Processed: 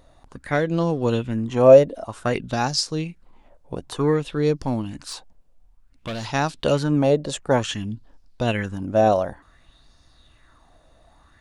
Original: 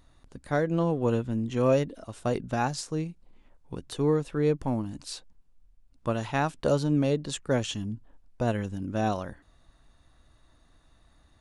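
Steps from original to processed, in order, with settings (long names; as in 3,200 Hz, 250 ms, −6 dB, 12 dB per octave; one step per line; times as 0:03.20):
0:05.03–0:06.25: hard clipping −31 dBFS, distortion −21 dB
auto-filter bell 0.55 Hz 570–5,200 Hz +13 dB
level +4 dB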